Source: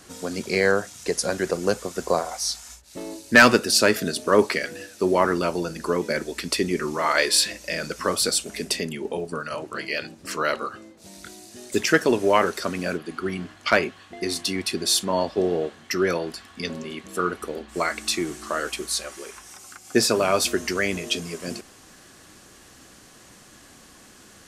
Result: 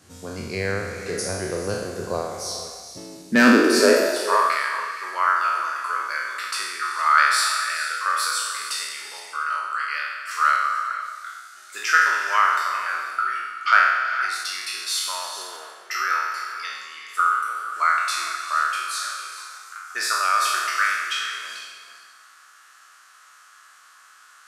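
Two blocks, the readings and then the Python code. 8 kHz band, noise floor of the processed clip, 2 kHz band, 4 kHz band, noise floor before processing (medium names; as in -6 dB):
-2.0 dB, -51 dBFS, +3.5 dB, -1.5 dB, -50 dBFS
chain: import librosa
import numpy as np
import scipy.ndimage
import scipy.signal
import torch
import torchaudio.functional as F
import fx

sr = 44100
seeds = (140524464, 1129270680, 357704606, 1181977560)

y = fx.spec_trails(x, sr, decay_s=1.26)
y = fx.filter_sweep_highpass(y, sr, from_hz=92.0, to_hz=1300.0, start_s=2.91, end_s=4.55, q=6.1)
y = fx.rev_gated(y, sr, seeds[0], gate_ms=490, shape='rising', drr_db=9.5)
y = F.gain(torch.from_numpy(y), -8.0).numpy()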